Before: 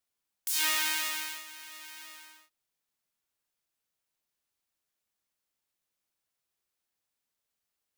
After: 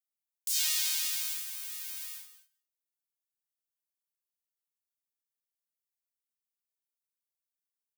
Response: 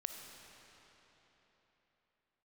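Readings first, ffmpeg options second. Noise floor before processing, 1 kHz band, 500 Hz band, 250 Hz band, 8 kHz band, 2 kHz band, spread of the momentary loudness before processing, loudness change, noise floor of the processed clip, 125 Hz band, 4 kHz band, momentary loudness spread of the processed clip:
under -85 dBFS, -15.5 dB, under -20 dB, under -25 dB, +2.0 dB, -9.0 dB, 19 LU, -1.5 dB, under -85 dBFS, no reading, -0.5 dB, 13 LU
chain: -filter_complex "[0:a]acrossover=split=7000[s0][s1];[s1]acompressor=threshold=0.00891:ratio=4:attack=1:release=60[s2];[s0][s2]amix=inputs=2:normalize=0,agate=range=0.141:threshold=0.00398:ratio=16:detection=peak,aderivative,aecho=1:1:183|192:0.126|0.168,acrossover=split=150|3000[s3][s4][s5];[s4]acompressor=threshold=0.00178:ratio=2[s6];[s3][s6][s5]amix=inputs=3:normalize=0,volume=2.11"

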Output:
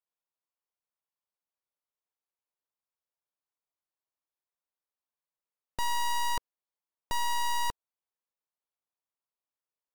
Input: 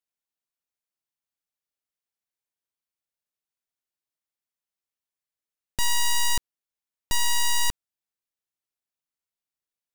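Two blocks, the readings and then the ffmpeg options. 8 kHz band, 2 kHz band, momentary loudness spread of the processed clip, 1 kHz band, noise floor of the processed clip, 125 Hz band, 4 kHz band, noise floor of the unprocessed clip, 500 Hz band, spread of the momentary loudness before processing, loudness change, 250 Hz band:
-12.5 dB, -6.5 dB, 8 LU, +2.5 dB, under -85 dBFS, -8.5 dB, -9.0 dB, under -85 dBFS, -1.0 dB, 8 LU, -6.5 dB, -7.0 dB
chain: -af "equalizer=f=500:t=o:w=1:g=7,equalizer=f=1000:t=o:w=1:g=10,equalizer=f=8000:t=o:w=1:g=-5,volume=0.376" -ar 48000 -c:a libmp3lame -b:a 192k

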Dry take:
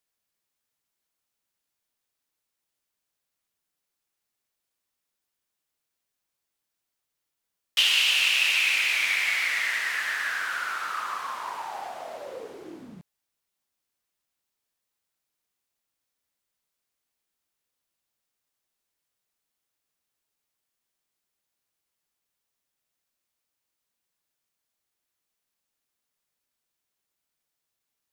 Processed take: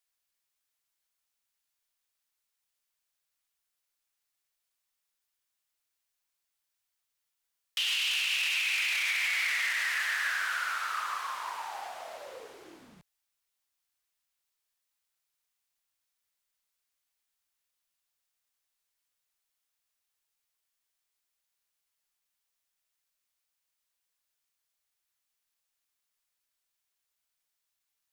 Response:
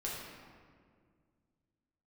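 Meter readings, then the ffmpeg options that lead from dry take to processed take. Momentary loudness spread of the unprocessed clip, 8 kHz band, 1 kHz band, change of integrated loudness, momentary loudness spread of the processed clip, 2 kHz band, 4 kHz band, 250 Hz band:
19 LU, -4.5 dB, -3.5 dB, -5.5 dB, 15 LU, -4.5 dB, -6.5 dB, under -10 dB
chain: -af "equalizer=f=220:t=o:w=2.9:g=-13,alimiter=limit=0.0841:level=0:latency=1:release=11"

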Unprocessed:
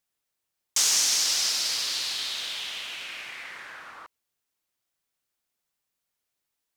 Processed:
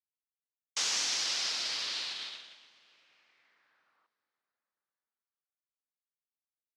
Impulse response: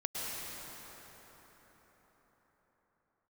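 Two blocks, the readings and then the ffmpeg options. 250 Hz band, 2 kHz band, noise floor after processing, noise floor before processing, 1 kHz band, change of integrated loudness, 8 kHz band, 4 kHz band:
-5.0 dB, -6.0 dB, under -85 dBFS, -83 dBFS, -5.5 dB, -7.0 dB, -11.5 dB, -7.0 dB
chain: -filter_complex "[0:a]agate=range=0.0447:threshold=0.0316:ratio=16:detection=peak,highpass=130,lowpass=4500,asplit=2[s0][s1];[1:a]atrim=start_sample=2205,adelay=38[s2];[s1][s2]afir=irnorm=-1:irlink=0,volume=0.0596[s3];[s0][s3]amix=inputs=2:normalize=0,volume=0.668"

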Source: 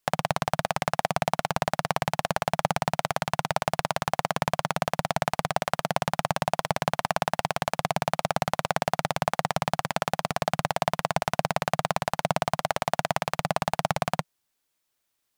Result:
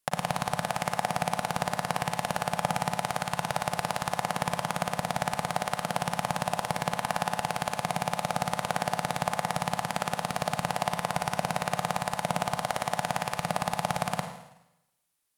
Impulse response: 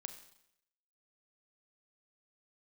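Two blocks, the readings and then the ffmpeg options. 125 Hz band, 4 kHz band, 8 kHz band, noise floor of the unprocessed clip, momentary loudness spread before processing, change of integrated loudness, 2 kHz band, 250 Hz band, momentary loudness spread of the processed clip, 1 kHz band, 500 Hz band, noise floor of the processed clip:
-3.0 dB, -2.0 dB, +0.5 dB, -78 dBFS, 1 LU, -2.5 dB, -2.5 dB, -2.0 dB, 1 LU, -2.0 dB, -4.5 dB, -65 dBFS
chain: -filter_complex "[0:a]equalizer=f=10000:t=o:w=0.58:g=7.5[s0];[1:a]atrim=start_sample=2205,asetrate=36603,aresample=44100[s1];[s0][s1]afir=irnorm=-1:irlink=0"

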